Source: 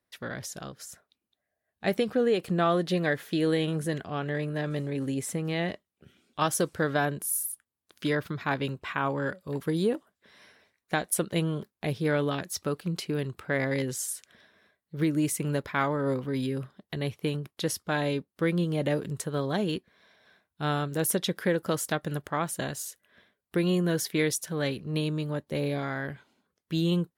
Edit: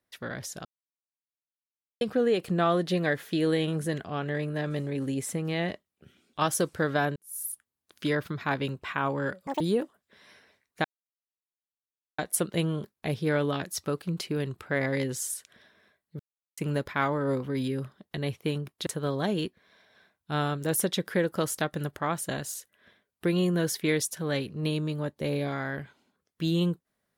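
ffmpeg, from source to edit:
-filter_complex "[0:a]asplit=10[s0][s1][s2][s3][s4][s5][s6][s7][s8][s9];[s0]atrim=end=0.65,asetpts=PTS-STARTPTS,afade=t=out:st=0.646:d=0.004:c=hsin[s10];[s1]atrim=start=0.65:end=2.01,asetpts=PTS-STARTPTS,volume=0[s11];[s2]atrim=start=2.01:end=7.16,asetpts=PTS-STARTPTS,afade=t=in:d=0.004:c=hsin,afade=t=out:st=5.146:d=0.004:c=hsin[s12];[s3]atrim=start=7.16:end=9.474,asetpts=PTS-STARTPTS,afade=t=in:d=0.32:c=qua[s13];[s4]atrim=start=9.47:end=9.73,asetpts=PTS-STARTPTS,asetrate=85554,aresample=44100,atrim=end_sample=5910,asetpts=PTS-STARTPTS[s14];[s5]atrim=start=9.726:end=10.97,asetpts=PTS-STARTPTS,afade=t=out:st=1.24:d=0.004:c=hsin,apad=pad_dur=1.34[s15];[s6]atrim=start=10.97:end=14.98,asetpts=PTS-STARTPTS,afade=t=in:d=0.004:c=hsin,afade=t=out:st=4.006:d=0.004:c=hsin[s16];[s7]atrim=start=14.98:end=15.36,asetpts=PTS-STARTPTS,volume=0[s17];[s8]atrim=start=15.36:end=17.652,asetpts=PTS-STARTPTS,afade=t=in:d=0.004:c=hsin[s18];[s9]atrim=start=19.168[s19];[s10][s11][s12][s13]concat=n=4:v=0:a=1[s20];[s20][s14]acrossfade=d=0.004:c1=hsin:c2=hsin[s21];[s15][s16][s17][s18]concat=n=4:v=0:a=1[s22];[s21][s22]acrossfade=d=0.004:c1=hsin:c2=hsin[s23];[s23][s19]acrossfade=d=0.004:c1=hsin:c2=hsin"

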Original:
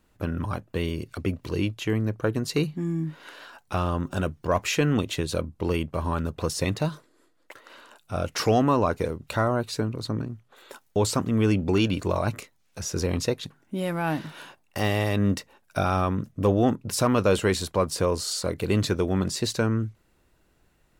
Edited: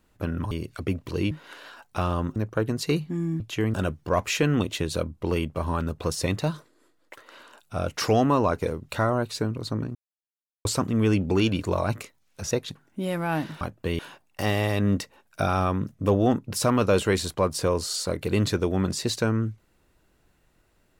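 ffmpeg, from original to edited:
-filter_complex "[0:a]asplit=11[s0][s1][s2][s3][s4][s5][s6][s7][s8][s9][s10];[s0]atrim=end=0.512[s11];[s1]atrim=start=0.888:end=1.692[s12];[s2]atrim=start=3.068:end=4.122[s13];[s3]atrim=start=2.028:end=3.072[s14];[s4]atrim=start=1.688:end=2.032[s15];[s5]atrim=start=4.118:end=10.33,asetpts=PTS-STARTPTS,afade=t=out:st=6.208:d=0.004:c=hsin[s16];[s6]atrim=start=10.33:end=11.03,asetpts=PTS-STARTPTS,volume=0[s17];[s7]atrim=start=11.03:end=12.892,asetpts=PTS-STARTPTS,afade=t=in:d=0.004:c=hsin[s18];[s8]atrim=start=13.258:end=14.362[s19];[s9]atrim=start=0.508:end=0.892[s20];[s10]atrim=start=14.358[s21];[s11][s12]acrossfade=d=0.004:c1=hsin:c2=hsin[s22];[s22][s13]acrossfade=d=0.004:c1=hsin:c2=hsin[s23];[s23][s14]acrossfade=d=0.004:c1=hsin:c2=hsin[s24];[s24][s15]acrossfade=d=0.004:c1=hsin:c2=hsin[s25];[s16][s17][s18]concat=n=3:v=0:a=1[s26];[s25][s26]acrossfade=d=0.004:c1=hsin:c2=hsin[s27];[s27][s19]acrossfade=d=0.004:c1=hsin:c2=hsin[s28];[s28][s20]acrossfade=d=0.004:c1=hsin:c2=hsin[s29];[s29][s21]acrossfade=d=0.004:c1=hsin:c2=hsin"

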